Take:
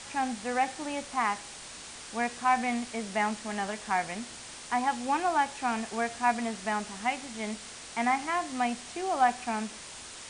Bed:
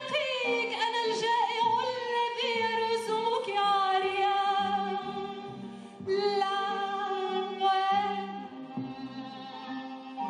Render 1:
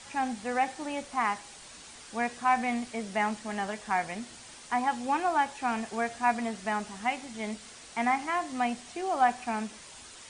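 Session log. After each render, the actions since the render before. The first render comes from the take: denoiser 6 dB, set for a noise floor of -45 dBFS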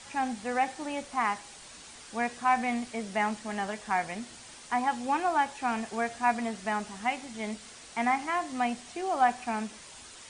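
nothing audible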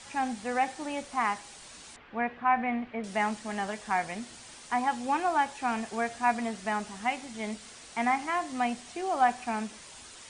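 1.96–3.04 LPF 2600 Hz 24 dB/oct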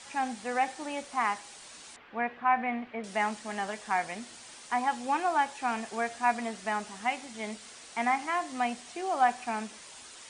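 low shelf 160 Hz -11 dB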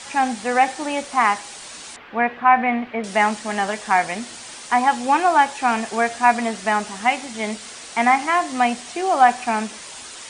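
gain +11.5 dB; limiter -3 dBFS, peak gain reduction 0.5 dB

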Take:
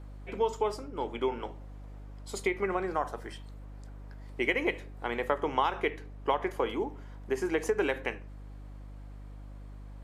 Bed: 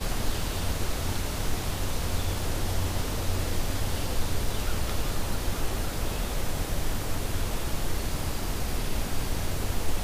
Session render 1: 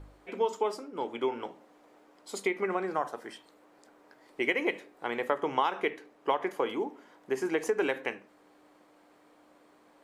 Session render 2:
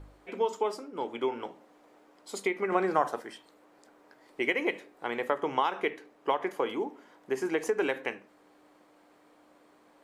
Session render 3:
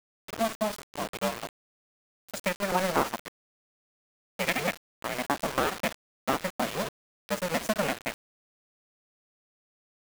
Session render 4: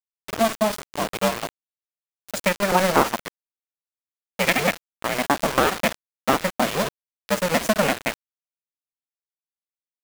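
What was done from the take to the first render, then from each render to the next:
de-hum 50 Hz, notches 5
2.72–3.22 gain +5 dB
cycle switcher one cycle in 2, inverted; requantised 6-bit, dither none
gain +8 dB

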